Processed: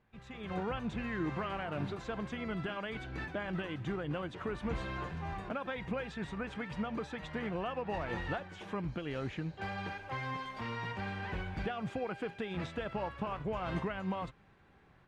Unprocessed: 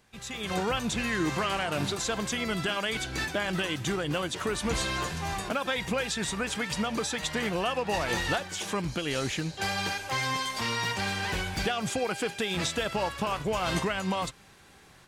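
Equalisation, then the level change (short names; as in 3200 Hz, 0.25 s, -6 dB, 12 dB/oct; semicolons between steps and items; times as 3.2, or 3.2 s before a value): tone controls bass +3 dB, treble -14 dB; high shelf 4100 Hz -12 dB; -7.5 dB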